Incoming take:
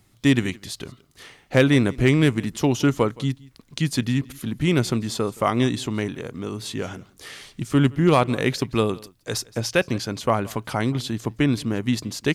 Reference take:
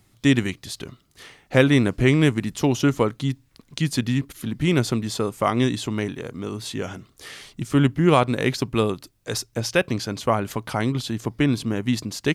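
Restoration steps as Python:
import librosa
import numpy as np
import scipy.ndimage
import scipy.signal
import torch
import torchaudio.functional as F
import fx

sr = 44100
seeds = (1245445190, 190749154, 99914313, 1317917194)

y = fx.fix_declip(x, sr, threshold_db=-8.0)
y = fx.fix_echo_inverse(y, sr, delay_ms=170, level_db=-23.0)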